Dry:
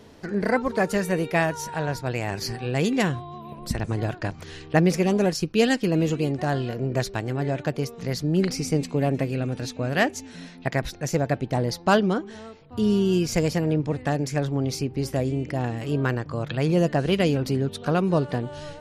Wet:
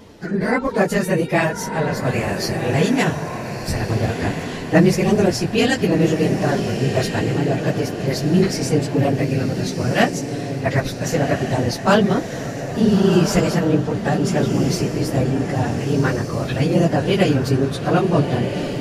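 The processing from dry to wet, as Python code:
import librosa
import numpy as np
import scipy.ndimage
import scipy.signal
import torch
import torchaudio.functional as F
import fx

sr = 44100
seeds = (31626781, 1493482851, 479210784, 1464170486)

y = fx.phase_scramble(x, sr, seeds[0], window_ms=50)
y = fx.echo_diffused(y, sr, ms=1391, feedback_pct=42, wet_db=-7.0)
y = y * librosa.db_to_amplitude(5.0)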